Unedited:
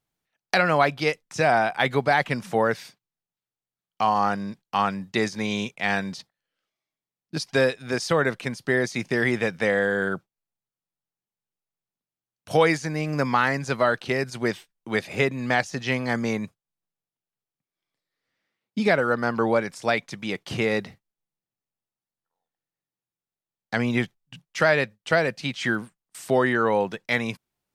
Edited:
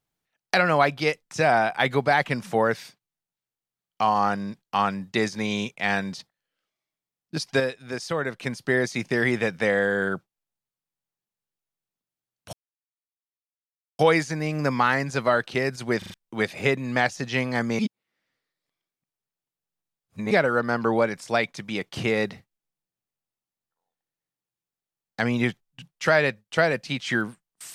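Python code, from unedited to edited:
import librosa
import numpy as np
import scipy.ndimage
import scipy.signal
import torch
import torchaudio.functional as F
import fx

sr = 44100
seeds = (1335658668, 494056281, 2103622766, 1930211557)

y = fx.edit(x, sr, fx.clip_gain(start_s=7.6, length_s=0.81, db=-5.5),
    fx.insert_silence(at_s=12.53, length_s=1.46),
    fx.stutter_over(start_s=14.52, slice_s=0.04, count=4),
    fx.reverse_span(start_s=16.33, length_s=2.52), tone=tone)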